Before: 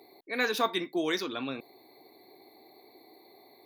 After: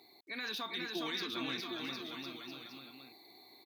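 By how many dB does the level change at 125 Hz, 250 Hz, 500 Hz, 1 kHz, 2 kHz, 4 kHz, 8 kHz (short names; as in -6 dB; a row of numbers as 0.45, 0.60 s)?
-4.0, -7.0, -12.0, -10.0, -7.0, -1.5, -7.5 dB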